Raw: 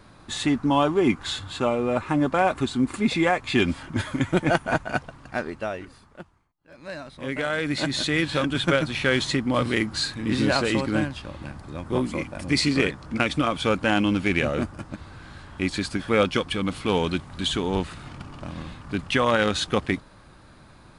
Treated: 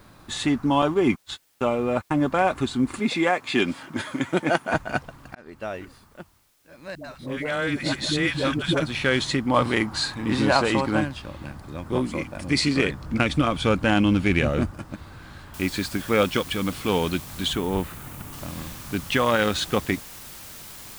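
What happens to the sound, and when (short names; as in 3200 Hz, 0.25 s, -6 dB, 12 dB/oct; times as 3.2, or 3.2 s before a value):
0.82–2.3 gate -29 dBFS, range -58 dB
2.99–4.74 HPF 200 Hz
5.35–5.77 fade in
6.95–8.8 dispersion highs, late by 93 ms, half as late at 460 Hz
9.48–11.01 bell 900 Hz +8.5 dB 0.92 oct
12.89–14.71 low shelf 160 Hz +8.5 dB
15.54 noise floor step -65 dB -42 dB
17.53–18.33 bell 4900 Hz -8 dB 1.4 oct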